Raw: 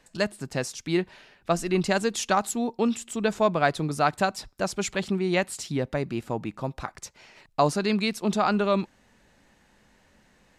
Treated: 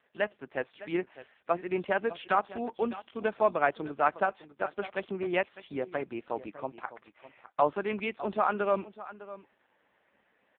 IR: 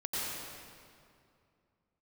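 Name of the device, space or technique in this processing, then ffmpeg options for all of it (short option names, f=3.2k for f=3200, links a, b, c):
satellite phone: -af "highpass=370,lowpass=3.1k,aecho=1:1:605:0.168,volume=-1.5dB" -ar 8000 -c:a libopencore_amrnb -b:a 5150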